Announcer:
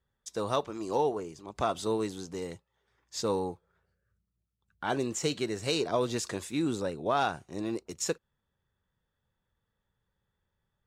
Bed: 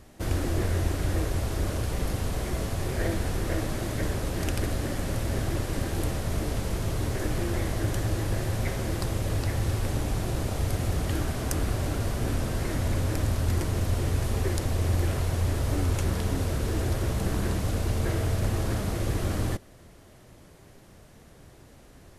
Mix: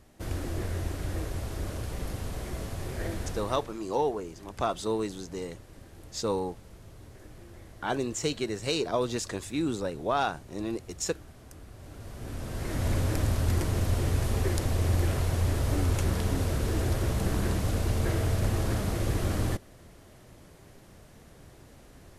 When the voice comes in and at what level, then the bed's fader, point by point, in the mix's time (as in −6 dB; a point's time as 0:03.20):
3.00 s, +0.5 dB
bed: 0:03.30 −6 dB
0:03.86 −20.5 dB
0:11.71 −20.5 dB
0:12.88 −0.5 dB